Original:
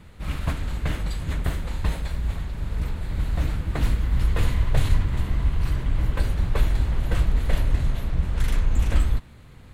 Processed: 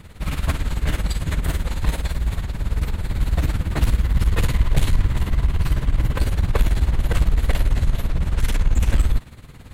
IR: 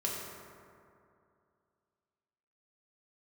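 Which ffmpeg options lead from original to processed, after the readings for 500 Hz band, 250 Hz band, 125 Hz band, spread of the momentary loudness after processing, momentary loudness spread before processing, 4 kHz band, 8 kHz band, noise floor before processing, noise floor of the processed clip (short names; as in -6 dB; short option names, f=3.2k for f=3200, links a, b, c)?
+3.5 dB, +3.5 dB, +3.5 dB, 5 LU, 6 LU, +5.0 dB, n/a, -46 dBFS, -41 dBFS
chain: -af "highshelf=f=5.3k:g=5,asoftclip=type=tanh:threshold=-14.5dB,tremolo=f=18:d=0.7,volume=8dB"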